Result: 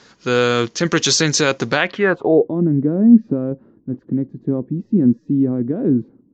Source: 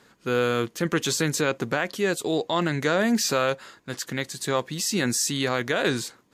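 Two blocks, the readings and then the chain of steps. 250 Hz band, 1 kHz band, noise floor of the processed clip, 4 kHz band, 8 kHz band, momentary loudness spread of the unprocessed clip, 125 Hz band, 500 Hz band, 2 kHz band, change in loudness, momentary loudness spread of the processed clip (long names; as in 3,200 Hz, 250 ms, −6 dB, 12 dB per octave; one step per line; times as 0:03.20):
+12.0 dB, +2.5 dB, −56 dBFS, +5.5 dB, +3.5 dB, 8 LU, +9.0 dB, +6.0 dB, +4.5 dB, +8.0 dB, 10 LU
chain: low-pass filter sweep 5,700 Hz → 270 Hz, 0:01.67–0:02.56
downsampling to 16,000 Hz
level +7 dB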